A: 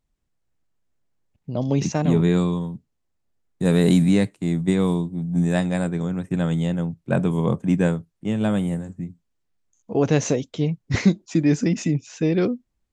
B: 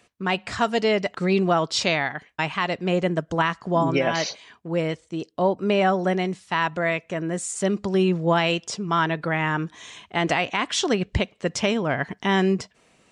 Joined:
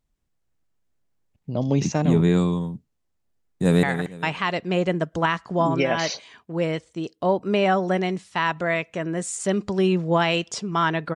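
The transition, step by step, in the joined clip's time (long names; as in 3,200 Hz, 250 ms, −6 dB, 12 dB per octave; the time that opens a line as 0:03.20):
A
0:03.39–0:03.83: delay throw 230 ms, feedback 30%, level −10 dB
0:03.83: continue with B from 0:01.99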